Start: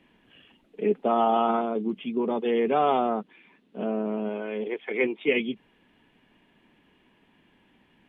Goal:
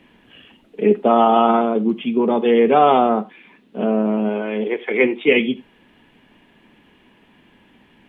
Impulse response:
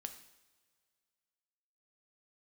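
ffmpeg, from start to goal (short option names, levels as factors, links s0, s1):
-filter_complex "[0:a]asplit=2[s0][s1];[1:a]atrim=start_sample=2205,atrim=end_sample=4410[s2];[s1][s2]afir=irnorm=-1:irlink=0,volume=2[s3];[s0][s3]amix=inputs=2:normalize=0,volume=1.26"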